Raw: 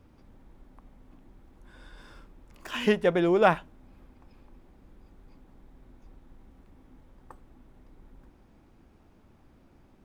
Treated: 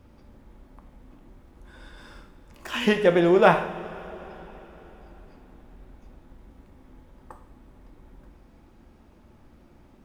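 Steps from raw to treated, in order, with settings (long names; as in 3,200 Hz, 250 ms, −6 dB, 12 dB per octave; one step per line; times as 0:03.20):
coupled-rooms reverb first 0.6 s, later 4.4 s, from −17 dB, DRR 5 dB
level +3.5 dB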